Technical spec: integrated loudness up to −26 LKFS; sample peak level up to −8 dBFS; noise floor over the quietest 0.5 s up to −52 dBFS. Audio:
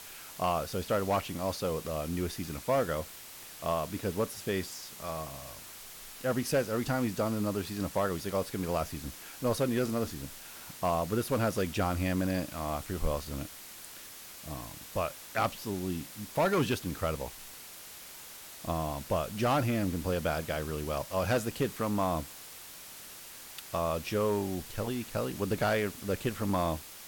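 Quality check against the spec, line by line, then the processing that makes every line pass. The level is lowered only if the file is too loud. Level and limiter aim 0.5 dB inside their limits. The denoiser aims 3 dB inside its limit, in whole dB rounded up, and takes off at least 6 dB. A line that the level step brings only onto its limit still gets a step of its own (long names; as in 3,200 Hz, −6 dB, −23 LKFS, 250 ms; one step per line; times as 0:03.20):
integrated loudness −32.5 LKFS: in spec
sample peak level −18.0 dBFS: in spec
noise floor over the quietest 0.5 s −48 dBFS: out of spec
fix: broadband denoise 7 dB, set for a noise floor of −48 dBFS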